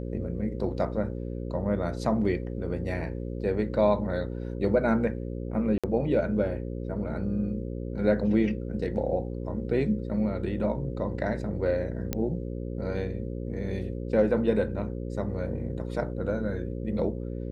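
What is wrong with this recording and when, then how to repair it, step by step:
buzz 60 Hz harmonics 9 -34 dBFS
5.78–5.84 s: dropout 56 ms
12.13 s: pop -13 dBFS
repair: de-click; de-hum 60 Hz, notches 9; interpolate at 5.78 s, 56 ms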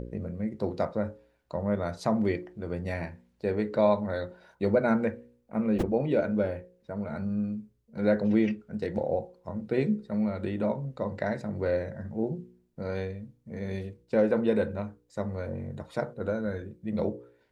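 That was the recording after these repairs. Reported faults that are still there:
nothing left

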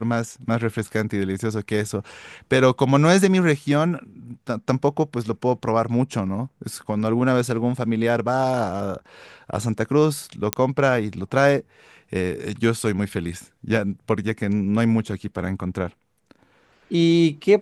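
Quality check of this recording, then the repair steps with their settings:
10.53 s: pop -2 dBFS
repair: de-click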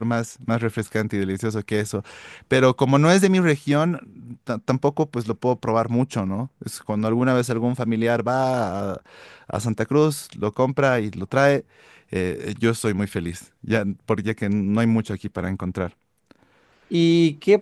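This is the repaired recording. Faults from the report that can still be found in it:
nothing left

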